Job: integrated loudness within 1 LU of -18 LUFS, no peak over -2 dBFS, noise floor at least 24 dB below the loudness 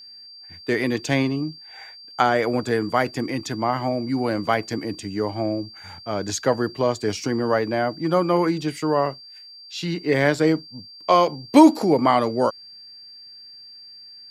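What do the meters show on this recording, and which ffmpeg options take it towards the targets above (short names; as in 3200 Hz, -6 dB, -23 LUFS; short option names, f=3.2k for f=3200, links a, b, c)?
steady tone 4700 Hz; tone level -41 dBFS; loudness -22.0 LUFS; peak -1.0 dBFS; loudness target -18.0 LUFS
-> -af "bandreject=f=4.7k:w=30"
-af "volume=4dB,alimiter=limit=-2dB:level=0:latency=1"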